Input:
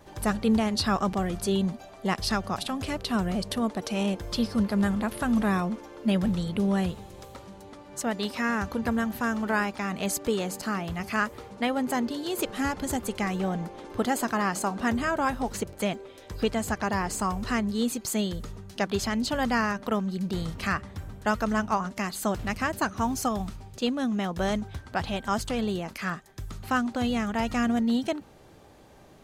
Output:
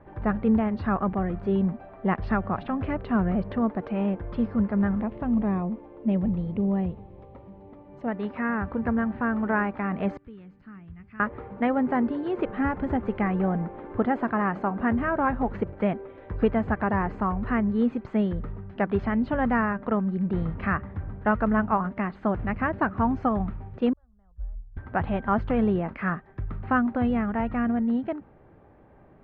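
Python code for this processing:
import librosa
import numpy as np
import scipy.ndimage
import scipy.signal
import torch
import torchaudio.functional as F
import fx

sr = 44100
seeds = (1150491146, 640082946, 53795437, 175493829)

y = fx.peak_eq(x, sr, hz=1500.0, db=-12.0, octaves=0.77, at=(5.02, 8.08))
y = fx.tone_stack(y, sr, knobs='6-0-2', at=(10.17, 11.2))
y = fx.cheby2_bandstop(y, sr, low_hz=120.0, high_hz=5700.0, order=4, stop_db=40, at=(23.93, 24.77))
y = scipy.signal.sosfilt(scipy.signal.butter(4, 2000.0, 'lowpass', fs=sr, output='sos'), y)
y = fx.low_shelf(y, sr, hz=340.0, db=3.5)
y = fx.rider(y, sr, range_db=10, speed_s=2.0)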